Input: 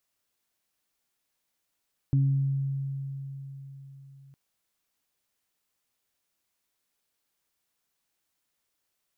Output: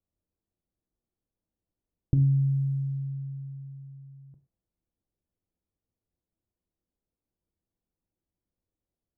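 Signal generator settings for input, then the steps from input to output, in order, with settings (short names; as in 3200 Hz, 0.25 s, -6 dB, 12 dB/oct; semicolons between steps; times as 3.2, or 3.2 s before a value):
additive tone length 2.21 s, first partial 137 Hz, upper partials -11 dB, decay 4.23 s, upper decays 0.87 s, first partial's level -19 dB
low-pass opened by the level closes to 450 Hz, open at -27.5 dBFS; low shelf 140 Hz +10.5 dB; non-linear reverb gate 0.15 s falling, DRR 7.5 dB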